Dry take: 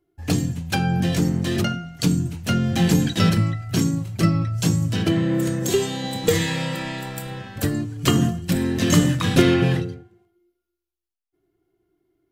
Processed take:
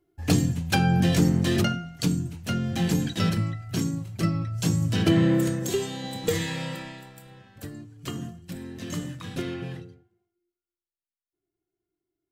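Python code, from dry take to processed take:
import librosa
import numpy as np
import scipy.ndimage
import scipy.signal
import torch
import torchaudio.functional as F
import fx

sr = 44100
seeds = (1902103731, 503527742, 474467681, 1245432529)

y = fx.gain(x, sr, db=fx.line((1.5, 0.0), (2.27, -6.5), (4.47, -6.5), (5.25, 1.5), (5.71, -6.5), (6.72, -6.5), (7.14, -16.0)))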